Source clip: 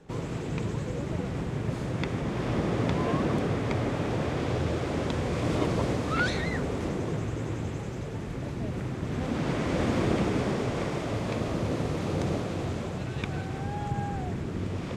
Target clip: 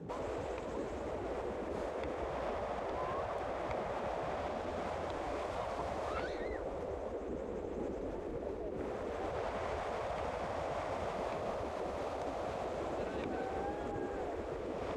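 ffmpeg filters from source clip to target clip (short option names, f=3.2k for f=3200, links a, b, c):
-filter_complex "[0:a]asoftclip=type=tanh:threshold=-18.5dB,asettb=1/sr,asplit=3[a][b][c];[a]atrim=end=6.244[d];[b]atrim=start=6.24:end=8.75,asetpts=PTS-STARTPTS,afade=t=in:d=0.004:c=qsin,afade=t=out:st=2.506:d=0.004:c=qsin,lowshelf=f=370:g=10[e];[c]atrim=start=8.746[f];[d][e]acrossfade=d=0.004:c1=hsin:c2=qsin[g];[g][f]acrossfade=d=0.004:c1=qsin:c2=hsin,acompressor=threshold=-28dB:ratio=6,alimiter=level_in=1.5dB:limit=-24dB:level=0:latency=1:release=219,volume=-1.5dB,highpass=110,tiltshelf=f=970:g=9.5,afftfilt=real='re*lt(hypot(re,im),0.112)':imag='im*lt(hypot(re,im),0.112)':win_size=1024:overlap=0.75,volume=1dB"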